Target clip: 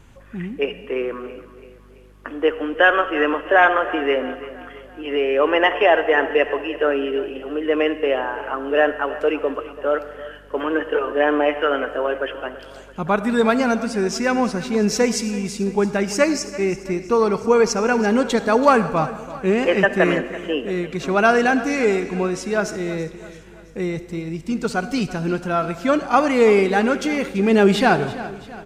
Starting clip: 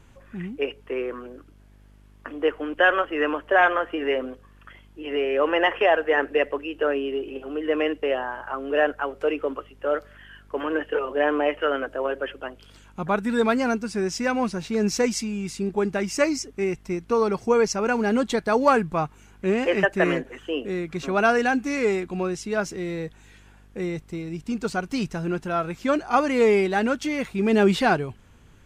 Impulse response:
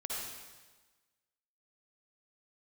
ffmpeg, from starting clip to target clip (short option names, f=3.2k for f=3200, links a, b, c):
-filter_complex "[0:a]aecho=1:1:334|668|1002|1336:0.15|0.0748|0.0374|0.0187,asplit=2[a][b];[1:a]atrim=start_sample=2205[c];[b][c]afir=irnorm=-1:irlink=0,volume=-13dB[d];[a][d]amix=inputs=2:normalize=0,volume=3dB"